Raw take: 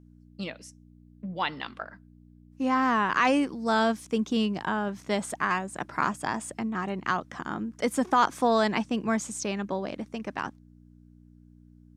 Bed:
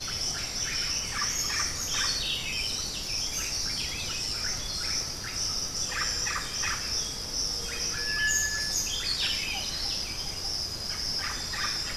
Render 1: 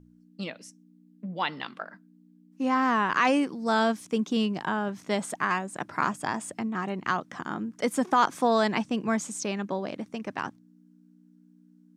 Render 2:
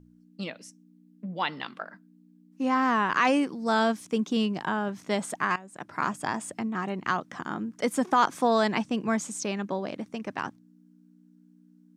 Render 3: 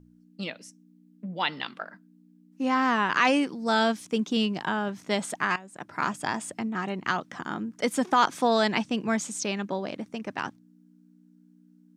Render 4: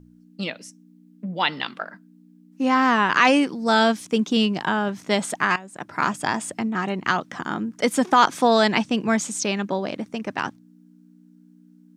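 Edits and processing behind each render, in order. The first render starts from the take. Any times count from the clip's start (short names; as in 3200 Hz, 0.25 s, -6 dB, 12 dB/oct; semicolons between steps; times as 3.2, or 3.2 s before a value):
de-hum 60 Hz, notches 2
5.56–6.17 fade in, from -16 dB
notch 1100 Hz, Q 20; dynamic EQ 3600 Hz, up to +5 dB, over -44 dBFS, Q 0.77
gain +5.5 dB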